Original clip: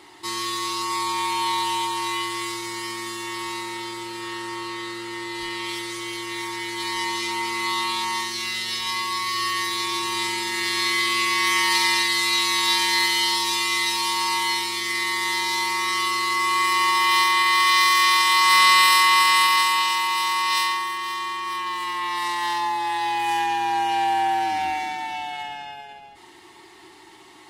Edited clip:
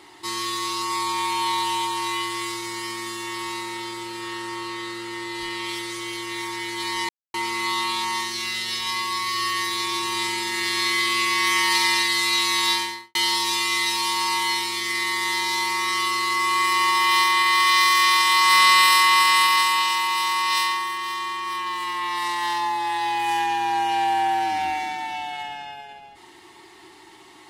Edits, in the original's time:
7.09–7.34 s: mute
12.67–13.15 s: studio fade out

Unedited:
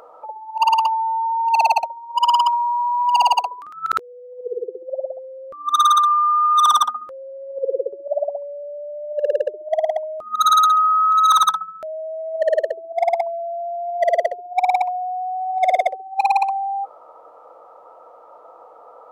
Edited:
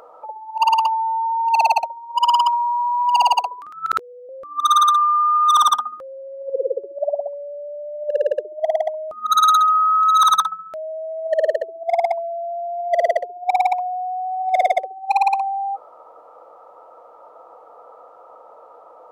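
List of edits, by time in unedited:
4.29–5.38 s: delete

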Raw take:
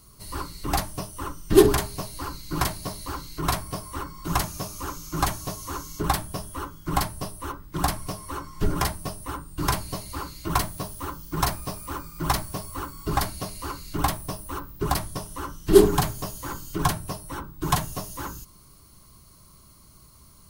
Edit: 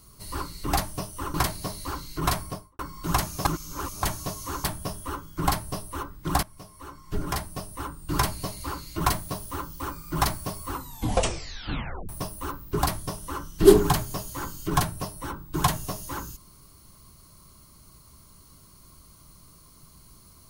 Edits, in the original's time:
1.34–2.55 s: delete
3.63–4.00 s: studio fade out
4.66–5.24 s: reverse
5.85–6.13 s: delete
7.92–9.58 s: fade in, from -17 dB
11.29–11.88 s: delete
12.78 s: tape stop 1.39 s

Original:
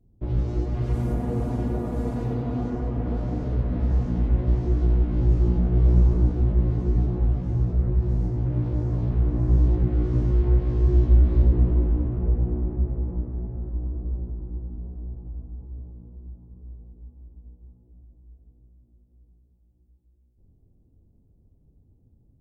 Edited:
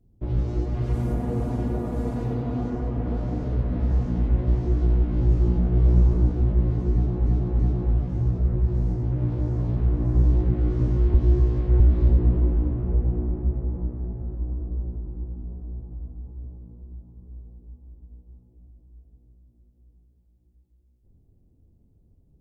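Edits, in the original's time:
6.93–7.26 s: loop, 3 plays
10.48–11.14 s: reverse

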